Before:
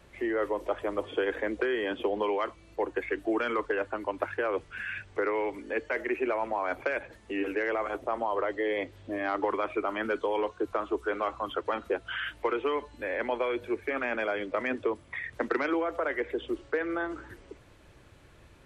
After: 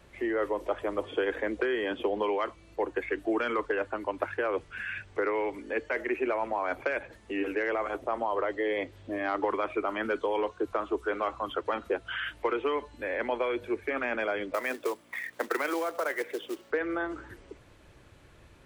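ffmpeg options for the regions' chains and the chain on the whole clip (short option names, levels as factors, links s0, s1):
-filter_complex "[0:a]asettb=1/sr,asplit=3[s0][s1][s2];[s0]atrim=end=14.544[s3];[s1]atrim=start=14.54:end=16.71,asetpts=PTS-STARTPTS,afade=t=in:d=0.004:c=qsin,afade=t=out:st=2.166:d=0.004:c=qsin,acrusher=bits=4:mode=log:mix=0:aa=0.000001,aeval=exprs='val(0)+0.00501*(sin(2*PI*60*n/s)+sin(2*PI*2*60*n/s)/2+sin(2*PI*3*60*n/s)/3+sin(2*PI*4*60*n/s)/4+sin(2*PI*5*60*n/s)/5)':c=same,highpass=390[s4];[s2]atrim=start=16.706[s5];[s3][s4]acrossfade=d=0.004:c1=hsin:c2=qsin[s6];[s6][s5]acrossfade=d=0.004:c1=qsin:c2=hsin"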